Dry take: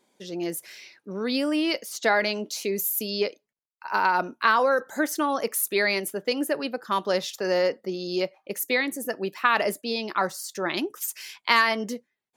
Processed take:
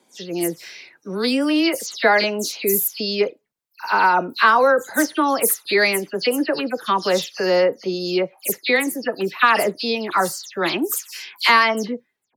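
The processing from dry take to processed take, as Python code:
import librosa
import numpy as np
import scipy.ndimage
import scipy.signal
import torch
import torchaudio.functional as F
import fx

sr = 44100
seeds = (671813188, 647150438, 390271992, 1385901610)

y = fx.spec_delay(x, sr, highs='early', ms=117)
y = y * 10.0 ** (6.5 / 20.0)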